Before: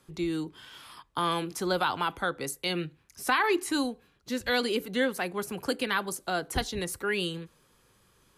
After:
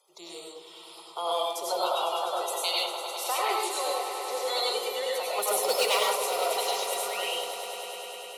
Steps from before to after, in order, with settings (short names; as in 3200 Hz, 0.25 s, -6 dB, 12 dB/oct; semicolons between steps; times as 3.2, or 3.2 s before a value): bin magnitudes rounded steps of 30 dB; 5.38–5.99 sample leveller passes 3; HPF 400 Hz 24 dB/oct; 2.64–3.24 tilt shelf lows -5.5 dB; fixed phaser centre 680 Hz, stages 4; swelling echo 0.101 s, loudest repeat 5, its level -13.5 dB; reverb RT60 0.45 s, pre-delay 60 ms, DRR -3 dB